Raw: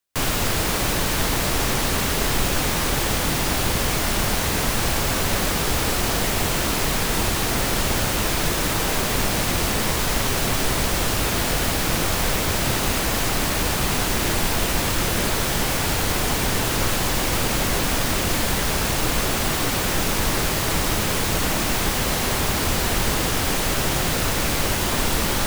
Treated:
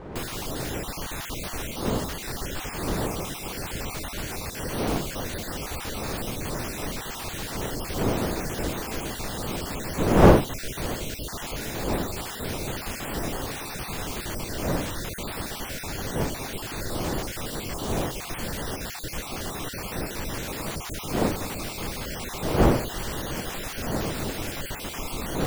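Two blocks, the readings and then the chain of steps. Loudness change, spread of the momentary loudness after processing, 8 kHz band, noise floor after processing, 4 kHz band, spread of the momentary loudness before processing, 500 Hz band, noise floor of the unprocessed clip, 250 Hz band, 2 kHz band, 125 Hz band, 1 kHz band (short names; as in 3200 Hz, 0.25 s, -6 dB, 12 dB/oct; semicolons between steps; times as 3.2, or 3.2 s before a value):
-8.0 dB, 6 LU, -12.0 dB, -37 dBFS, -12.0 dB, 0 LU, -3.0 dB, -23 dBFS, -3.0 dB, -10.5 dB, -5.0 dB, -7.0 dB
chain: random spectral dropouts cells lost 35%; wind noise 490 Hz -20 dBFS; gain -10 dB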